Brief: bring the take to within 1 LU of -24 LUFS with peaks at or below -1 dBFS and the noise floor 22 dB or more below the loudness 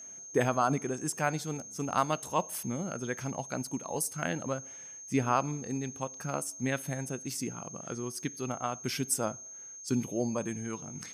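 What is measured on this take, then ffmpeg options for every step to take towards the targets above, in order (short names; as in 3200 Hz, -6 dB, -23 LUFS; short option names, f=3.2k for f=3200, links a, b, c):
steady tone 6400 Hz; tone level -44 dBFS; loudness -33.5 LUFS; peak -13.5 dBFS; loudness target -24.0 LUFS
-> -af "bandreject=f=6.4k:w=30"
-af "volume=9.5dB"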